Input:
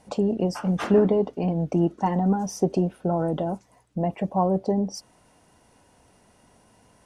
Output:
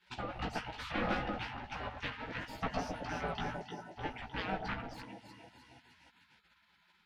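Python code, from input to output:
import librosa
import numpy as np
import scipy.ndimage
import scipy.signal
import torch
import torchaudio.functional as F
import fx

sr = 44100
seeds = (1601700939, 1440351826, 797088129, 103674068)

p1 = scipy.signal.sosfilt(scipy.signal.butter(4, 100.0, 'highpass', fs=sr, output='sos'), x)
p2 = fx.high_shelf(p1, sr, hz=4800.0, db=7.0)
p3 = fx.hum_notches(p2, sr, base_hz=50, count=4)
p4 = fx.echo_split(p3, sr, split_hz=530.0, low_ms=111, high_ms=305, feedback_pct=52, wet_db=-6.5)
p5 = 10.0 ** (-23.5 / 20.0) * (np.abs((p4 / 10.0 ** (-23.5 / 20.0) + 3.0) % 4.0 - 2.0) - 1.0)
p6 = p4 + (p5 * 10.0 ** (-4.0 / 20.0))
p7 = fx.fixed_phaser(p6, sr, hz=460.0, stages=4)
p8 = 10.0 ** (-17.5 / 20.0) * np.tanh(p7 / 10.0 ** (-17.5 / 20.0))
p9 = fx.doubler(p8, sr, ms=16.0, db=-3.0)
p10 = fx.spec_gate(p9, sr, threshold_db=-20, keep='weak')
p11 = fx.air_absorb(p10, sr, metres=340.0)
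y = p11 * 10.0 ** (5.0 / 20.0)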